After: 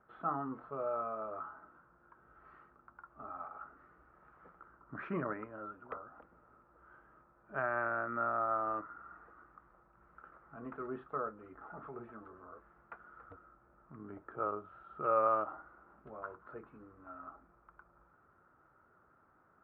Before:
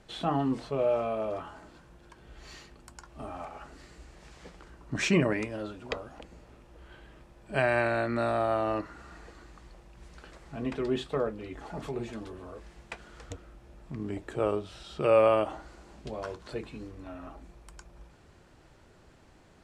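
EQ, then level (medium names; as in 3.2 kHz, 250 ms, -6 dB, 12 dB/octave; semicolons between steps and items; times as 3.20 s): high-pass 140 Hz 6 dB/octave; four-pole ladder low-pass 1.4 kHz, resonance 80%; distance through air 67 m; 0.0 dB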